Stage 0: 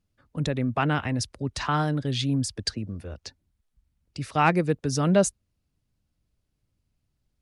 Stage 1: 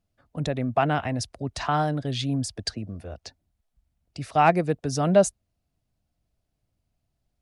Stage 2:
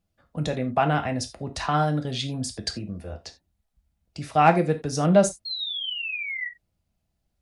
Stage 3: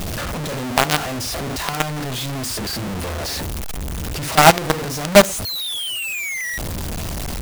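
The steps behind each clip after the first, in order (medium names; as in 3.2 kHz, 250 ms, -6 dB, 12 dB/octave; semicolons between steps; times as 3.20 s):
peaking EQ 690 Hz +11 dB 0.41 oct; trim -1.5 dB
painted sound fall, 5.45–6.48 s, 1.9–4.3 kHz -32 dBFS; gated-style reverb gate 110 ms falling, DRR 5 dB
jump at every zero crossing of -30.5 dBFS; companded quantiser 2-bit; trim -1 dB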